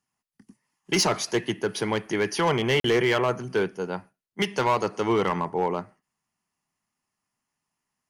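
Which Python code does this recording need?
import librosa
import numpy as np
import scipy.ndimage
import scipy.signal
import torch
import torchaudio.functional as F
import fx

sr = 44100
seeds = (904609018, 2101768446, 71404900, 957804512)

y = fx.fix_declip(x, sr, threshold_db=-16.0)
y = fx.fix_interpolate(y, sr, at_s=(2.8,), length_ms=43.0)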